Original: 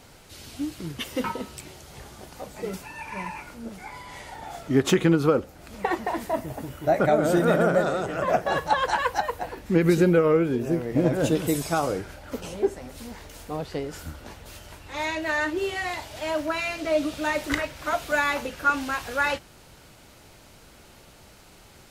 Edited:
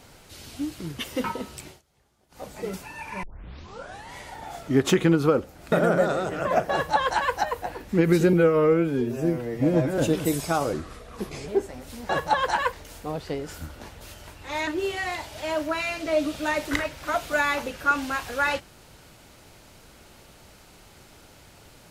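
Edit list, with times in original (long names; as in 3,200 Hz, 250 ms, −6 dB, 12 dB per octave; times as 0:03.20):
0:01.67–0:02.44: duck −23.5 dB, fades 0.15 s
0:03.23: tape start 0.91 s
0:05.72–0:07.49: remove
0:08.49–0:09.12: duplicate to 0:13.17
0:10.10–0:11.20: time-stretch 1.5×
0:11.95–0:12.56: play speed 81%
0:15.12–0:15.46: remove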